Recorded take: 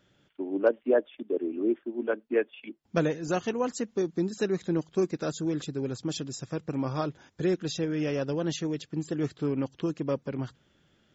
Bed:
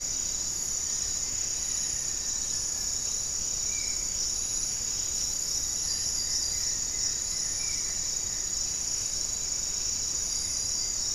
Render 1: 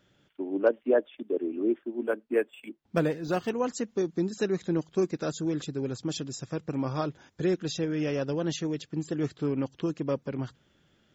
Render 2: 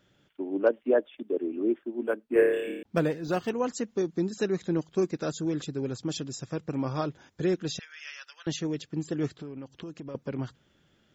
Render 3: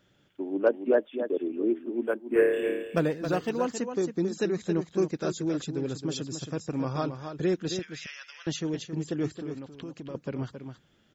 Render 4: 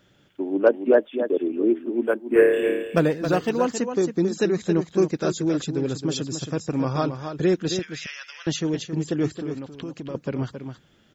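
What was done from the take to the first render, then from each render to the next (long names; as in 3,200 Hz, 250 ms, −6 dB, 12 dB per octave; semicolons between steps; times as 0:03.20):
0:02.05–0:03.50: linearly interpolated sample-rate reduction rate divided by 4×
0:02.33–0:02.83: flutter between parallel walls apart 4.9 metres, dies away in 0.93 s; 0:07.79–0:08.47: high-pass filter 1,500 Hz 24 dB per octave; 0:09.31–0:10.15: downward compressor, threshold −37 dBFS
single-tap delay 271 ms −8.5 dB
level +6 dB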